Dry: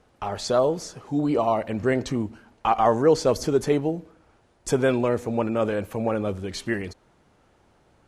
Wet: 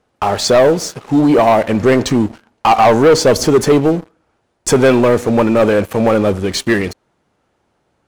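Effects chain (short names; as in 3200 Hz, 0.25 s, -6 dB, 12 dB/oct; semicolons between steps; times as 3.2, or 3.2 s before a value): low shelf 63 Hz -10.5 dB; sample leveller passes 3; gain +3.5 dB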